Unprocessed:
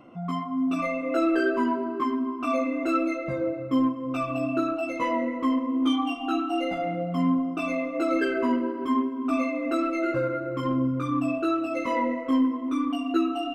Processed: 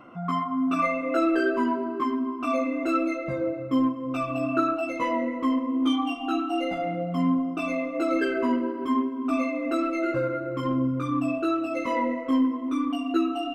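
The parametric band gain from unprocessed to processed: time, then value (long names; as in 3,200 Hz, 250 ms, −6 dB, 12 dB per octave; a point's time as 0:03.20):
parametric band 1,400 Hz 0.97 octaves
0:00.75 +10 dB
0:01.38 0 dB
0:04.35 0 dB
0:04.55 +8 dB
0:05.07 −0.5 dB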